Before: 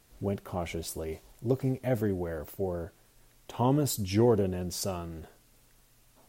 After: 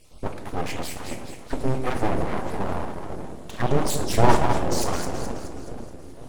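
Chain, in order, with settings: random spectral dropouts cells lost 30%; steep low-pass 11000 Hz 48 dB/oct; on a send: split-band echo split 350 Hz, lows 0.497 s, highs 0.212 s, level -7 dB; on the sum: shoebox room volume 170 m³, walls mixed, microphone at 0.56 m; full-wave rectifier; gain +8 dB

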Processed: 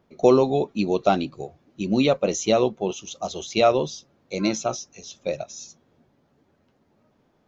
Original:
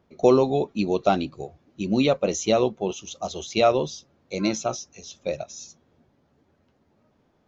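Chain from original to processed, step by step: bell 70 Hz -7.5 dB 0.55 oct; gain +1 dB

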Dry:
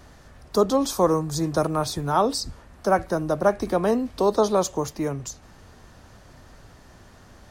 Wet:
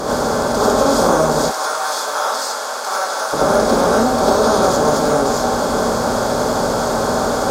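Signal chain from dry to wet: per-bin compression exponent 0.2; 1.41–3.33 HPF 1000 Hz 12 dB/oct; non-linear reverb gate 0.12 s rising, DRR -6 dB; gain -7 dB

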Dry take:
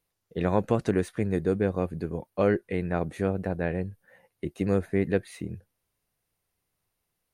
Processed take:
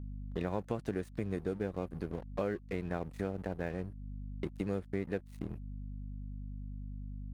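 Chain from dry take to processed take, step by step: crossover distortion -42.5 dBFS; hum 50 Hz, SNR 15 dB; compressor 3:1, threshold -39 dBFS, peak gain reduction 15.5 dB; gain +3 dB

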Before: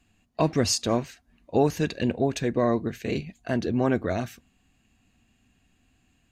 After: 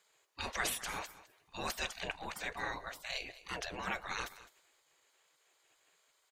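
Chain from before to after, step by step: transient shaper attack -3 dB, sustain +3 dB; spectral gate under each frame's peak -20 dB weak; echo 0.209 s -17 dB; gain +3 dB

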